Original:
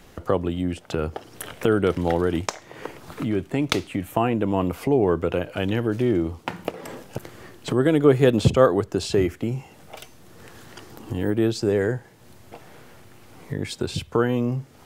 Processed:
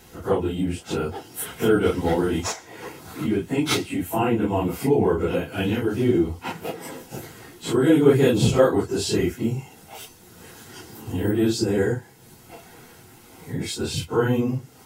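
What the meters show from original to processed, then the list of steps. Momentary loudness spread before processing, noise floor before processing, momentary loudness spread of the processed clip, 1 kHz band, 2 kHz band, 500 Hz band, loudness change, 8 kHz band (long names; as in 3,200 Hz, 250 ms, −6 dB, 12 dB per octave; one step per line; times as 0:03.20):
20 LU, −50 dBFS, 19 LU, −0.5 dB, +1.0 dB, 0.0 dB, +0.5 dB, +6.0 dB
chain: random phases in long frames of 100 ms
high-shelf EQ 5,300 Hz +9 dB
notch comb filter 590 Hz
level +1 dB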